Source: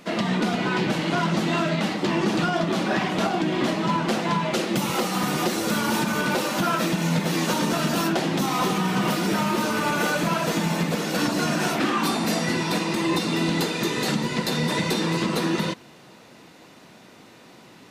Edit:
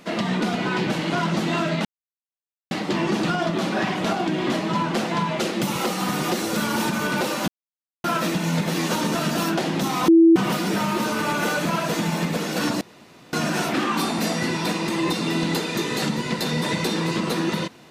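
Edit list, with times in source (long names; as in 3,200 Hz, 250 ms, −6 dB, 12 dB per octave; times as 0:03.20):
0:01.85: splice in silence 0.86 s
0:06.62: splice in silence 0.56 s
0:08.66–0:08.94: beep over 330 Hz −9 dBFS
0:11.39: splice in room tone 0.52 s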